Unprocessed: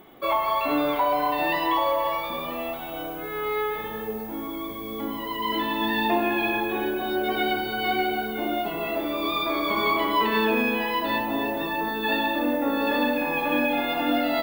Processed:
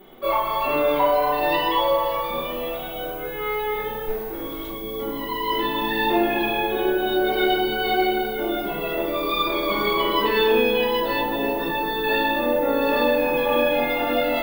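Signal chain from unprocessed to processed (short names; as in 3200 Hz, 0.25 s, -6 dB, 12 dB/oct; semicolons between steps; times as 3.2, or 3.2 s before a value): 4.07–4.7 minimum comb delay 2.7 ms; shoebox room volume 39 m³, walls mixed, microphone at 1.2 m; gain -4.5 dB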